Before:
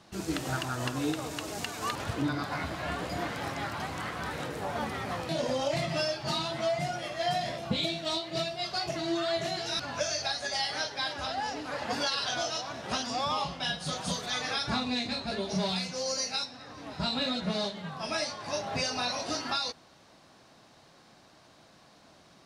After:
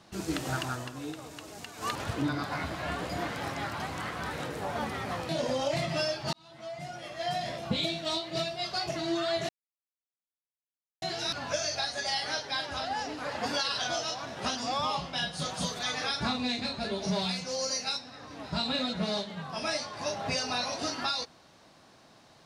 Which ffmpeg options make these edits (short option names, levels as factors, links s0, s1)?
-filter_complex "[0:a]asplit=5[s0][s1][s2][s3][s4];[s0]atrim=end=0.85,asetpts=PTS-STARTPTS,afade=t=out:st=0.72:d=0.13:silence=0.398107[s5];[s1]atrim=start=0.85:end=1.75,asetpts=PTS-STARTPTS,volume=0.398[s6];[s2]atrim=start=1.75:end=6.33,asetpts=PTS-STARTPTS,afade=t=in:d=0.13:silence=0.398107,afade=t=out:st=4.576:d=0.004:c=hsin[s7];[s3]atrim=start=6.33:end=9.49,asetpts=PTS-STARTPTS,afade=t=in:d=1.33,afade=t=out:st=3.156:d=0.004:c=hsin,apad=pad_dur=1.53[s8];[s4]atrim=start=9.49,asetpts=PTS-STARTPTS,afade=t=in:d=0.004:c=hsin[s9];[s5][s6][s7][s8][s9]concat=n=5:v=0:a=1"